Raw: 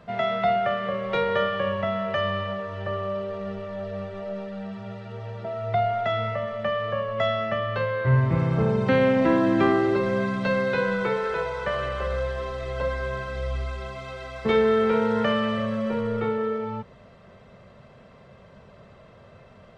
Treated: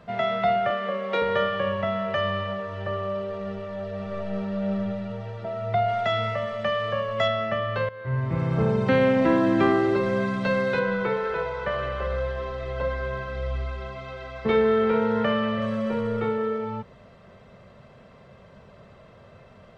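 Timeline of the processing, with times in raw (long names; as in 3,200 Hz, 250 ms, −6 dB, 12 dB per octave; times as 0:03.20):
0:00.70–0:01.22: Butterworth high-pass 190 Hz
0:03.95–0:04.77: thrown reverb, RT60 2.5 s, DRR −0.5 dB
0:05.88–0:07.28: high-shelf EQ 3,500 Hz +9.5 dB
0:07.89–0:08.63: fade in, from −16.5 dB
0:10.79–0:15.62: high-frequency loss of the air 120 metres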